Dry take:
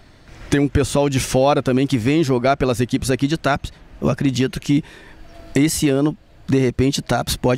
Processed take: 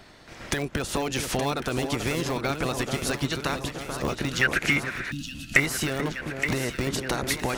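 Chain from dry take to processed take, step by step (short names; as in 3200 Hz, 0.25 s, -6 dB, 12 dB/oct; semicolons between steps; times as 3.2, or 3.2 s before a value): spectral limiter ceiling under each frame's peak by 15 dB; in parallel at -11 dB: wrapped overs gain 6.5 dB; on the sum: compressor, threshold -18 dBFS, peak gain reduction 8.5 dB; 4.41–5.6 band shelf 1800 Hz +15.5 dB 1.2 oct; on a send: echo with dull and thin repeats by turns 0.436 s, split 1400 Hz, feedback 78%, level -6 dB; 5.11–5.54 on the sum: spectral gain 310–2500 Hz -25 dB; gain -6.5 dB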